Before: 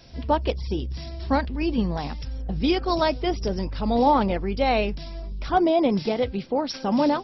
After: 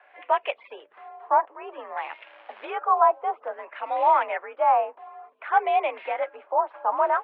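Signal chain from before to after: LFO low-pass sine 0.56 Hz 950–2400 Hz; 2.01–2.65 short-mantissa float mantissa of 2-bit; mistuned SSB +58 Hz 540–3000 Hz

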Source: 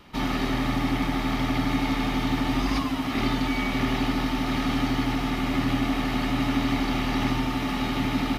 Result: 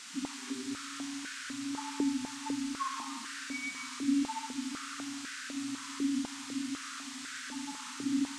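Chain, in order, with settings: loudest bins only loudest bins 4; band noise 1100–8300 Hz -47 dBFS; Schroeder reverb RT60 1.4 s, combs from 25 ms, DRR 0 dB; stepped high-pass 4 Hz 400–1500 Hz; gain -2 dB

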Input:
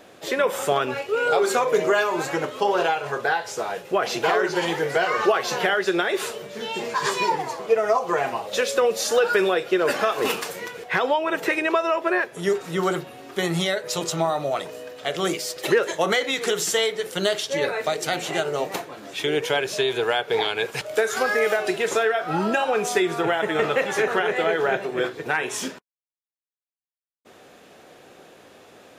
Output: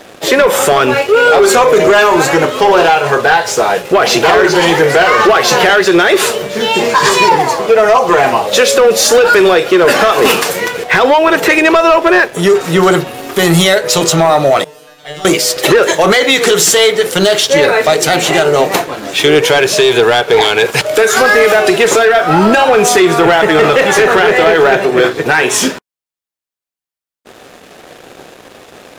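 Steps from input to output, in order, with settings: 13.14–13.79 high shelf 10000 Hz +10.5 dB; sample leveller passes 2; 14.64–15.25 resonator 150 Hz, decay 0.48 s, harmonics all, mix 100%; maximiser +11 dB; gain -1 dB

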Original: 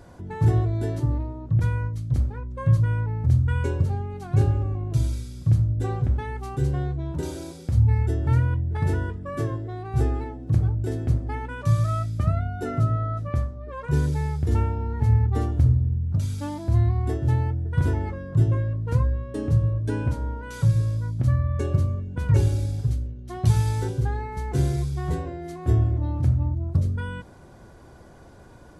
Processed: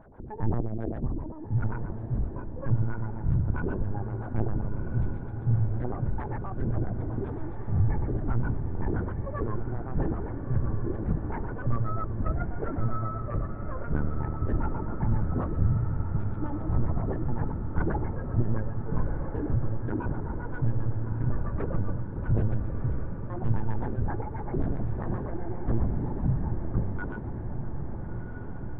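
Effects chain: LFO low-pass sine 7.6 Hz 270–1700 Hz; LPC vocoder at 8 kHz pitch kept; diffused feedback echo 1.349 s, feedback 69%, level -8 dB; gain -6.5 dB

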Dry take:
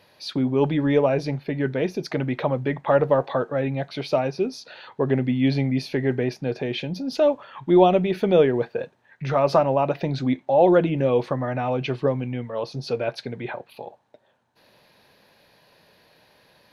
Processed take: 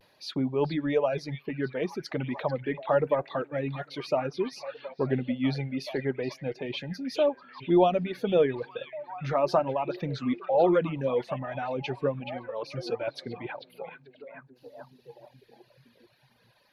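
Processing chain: delay with a stepping band-pass 0.433 s, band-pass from 2900 Hz, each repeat -0.7 oct, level -4.5 dB; reverb removal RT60 1.9 s; vibrato 0.36 Hz 28 cents; gain -5 dB

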